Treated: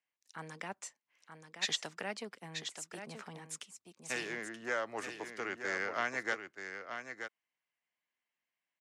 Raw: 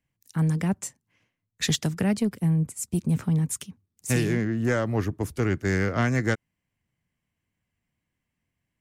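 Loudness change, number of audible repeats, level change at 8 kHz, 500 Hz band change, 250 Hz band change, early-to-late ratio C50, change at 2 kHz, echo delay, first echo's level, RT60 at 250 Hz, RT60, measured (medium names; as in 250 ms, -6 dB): -13.5 dB, 1, -10.5 dB, -11.5 dB, -23.0 dB, no reverb, -4.5 dB, 929 ms, -8.0 dB, no reverb, no reverb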